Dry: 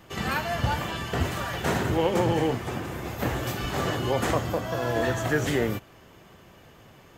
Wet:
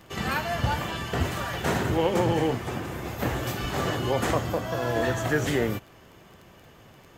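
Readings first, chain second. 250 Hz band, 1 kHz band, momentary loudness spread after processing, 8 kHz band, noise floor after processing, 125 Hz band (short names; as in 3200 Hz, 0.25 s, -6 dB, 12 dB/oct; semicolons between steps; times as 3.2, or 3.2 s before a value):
0.0 dB, 0.0 dB, 6 LU, 0.0 dB, -53 dBFS, 0.0 dB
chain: crackle 11/s -39 dBFS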